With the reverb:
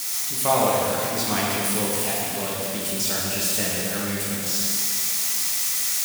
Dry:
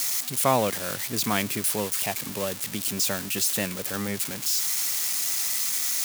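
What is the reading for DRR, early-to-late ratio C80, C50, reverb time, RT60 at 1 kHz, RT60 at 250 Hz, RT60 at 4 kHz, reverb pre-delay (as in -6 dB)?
-6.0 dB, -1.0 dB, -2.5 dB, 2.7 s, 2.7 s, 2.7 s, 2.5 s, 4 ms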